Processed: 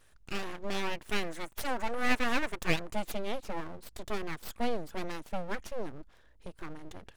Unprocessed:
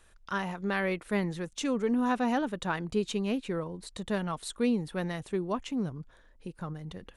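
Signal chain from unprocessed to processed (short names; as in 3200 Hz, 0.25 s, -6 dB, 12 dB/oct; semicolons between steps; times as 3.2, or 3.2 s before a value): 1.09–3.12 graphic EQ 250/1000/2000/4000/8000 Hz -4/+8/+7/-9/+9 dB; full-wave rectifier; gain -1 dB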